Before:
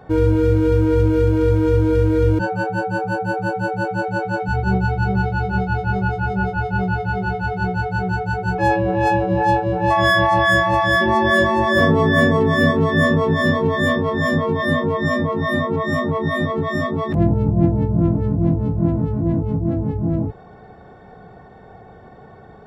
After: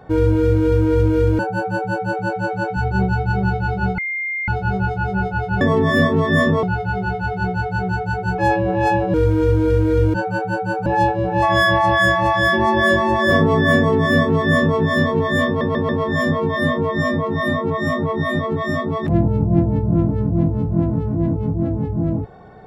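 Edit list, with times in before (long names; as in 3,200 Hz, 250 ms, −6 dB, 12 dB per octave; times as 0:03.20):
0:01.39–0:03.11: move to 0:09.34
0:05.70: insert tone 2,110 Hz −21 dBFS 0.50 s
0:12.25–0:13.27: duplicate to 0:06.83
0:13.95: stutter 0.14 s, 4 plays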